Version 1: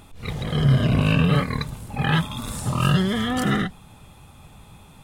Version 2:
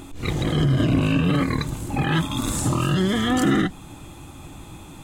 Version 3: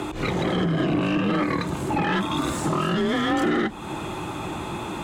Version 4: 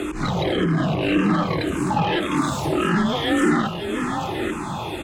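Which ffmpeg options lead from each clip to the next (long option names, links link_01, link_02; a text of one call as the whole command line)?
ffmpeg -i in.wav -filter_complex "[0:a]asplit=2[link_01][link_02];[link_02]acompressor=threshold=-28dB:ratio=6,volume=-1dB[link_03];[link_01][link_03]amix=inputs=2:normalize=0,alimiter=limit=-13.5dB:level=0:latency=1:release=32,superequalizer=6b=3.55:15b=1.78" out.wav
ffmpeg -i in.wav -filter_complex "[0:a]acompressor=threshold=-33dB:ratio=2.5,afreqshift=29,asplit=2[link_01][link_02];[link_02]highpass=frequency=720:poles=1,volume=19dB,asoftclip=type=tanh:threshold=-17.5dB[link_03];[link_01][link_03]amix=inputs=2:normalize=0,lowpass=frequency=1300:poles=1,volume=-6dB,volume=5.5dB" out.wav
ffmpeg -i in.wav -filter_complex "[0:a]asplit=2[link_01][link_02];[link_02]aecho=0:1:838:0.447[link_03];[link_01][link_03]amix=inputs=2:normalize=0,asplit=2[link_04][link_05];[link_05]afreqshift=-1.8[link_06];[link_04][link_06]amix=inputs=2:normalize=1,volume=5dB" out.wav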